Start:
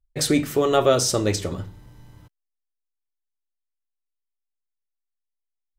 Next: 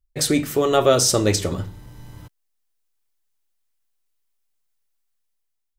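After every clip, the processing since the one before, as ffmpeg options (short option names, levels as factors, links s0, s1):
-af "dynaudnorm=f=380:g=5:m=3.55,highshelf=f=6100:g=4"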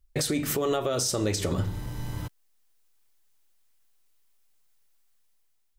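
-af "acompressor=threshold=0.0631:ratio=10,alimiter=level_in=1.06:limit=0.0631:level=0:latency=1:release=171,volume=0.944,volume=2.24"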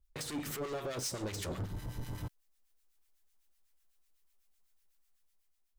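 -filter_complex "[0:a]asoftclip=type=hard:threshold=0.0299,acrossover=split=1200[s0][s1];[s0]aeval=exprs='val(0)*(1-0.7/2+0.7/2*cos(2*PI*8*n/s))':c=same[s2];[s1]aeval=exprs='val(0)*(1-0.7/2-0.7/2*cos(2*PI*8*n/s))':c=same[s3];[s2][s3]amix=inputs=2:normalize=0,volume=0.75"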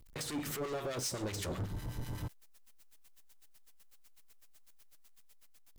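-af "aeval=exprs='val(0)+0.5*0.002*sgn(val(0))':c=same"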